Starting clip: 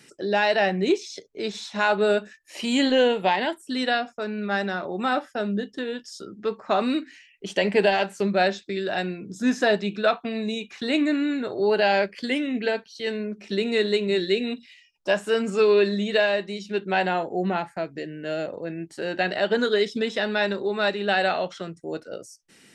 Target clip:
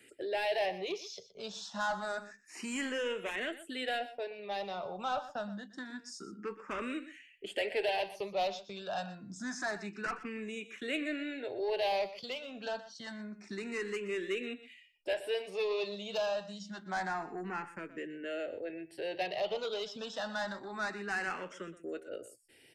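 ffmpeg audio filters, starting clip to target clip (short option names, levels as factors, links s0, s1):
-filter_complex "[0:a]equalizer=f=4000:w=7.8:g=-7,acrossover=split=450[s0][s1];[s0]acompressor=threshold=0.0141:ratio=6[s2];[s2][s1]amix=inputs=2:normalize=0,asoftclip=type=tanh:threshold=0.0841,aecho=1:1:122:0.178,asplit=2[s3][s4];[s4]afreqshift=0.27[s5];[s3][s5]amix=inputs=2:normalize=1,volume=0.596"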